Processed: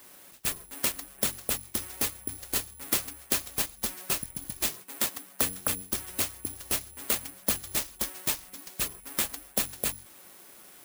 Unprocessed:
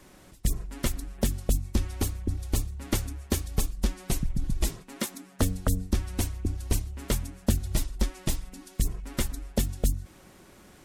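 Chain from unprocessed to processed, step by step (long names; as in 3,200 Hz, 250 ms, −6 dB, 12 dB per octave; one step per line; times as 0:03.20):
high-pass filter 660 Hz 6 dB per octave
bad sample-rate conversion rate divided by 4×, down none, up zero stuff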